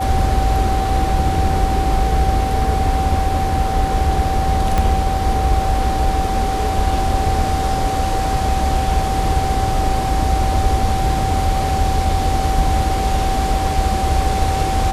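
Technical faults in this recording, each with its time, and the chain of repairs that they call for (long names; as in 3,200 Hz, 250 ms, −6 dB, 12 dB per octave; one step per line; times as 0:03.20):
whistle 770 Hz −20 dBFS
0:04.78: click −5 dBFS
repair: click removal
notch filter 770 Hz, Q 30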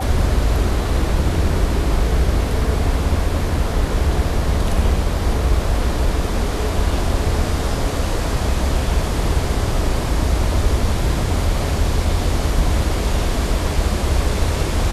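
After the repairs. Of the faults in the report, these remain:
0:04.78: click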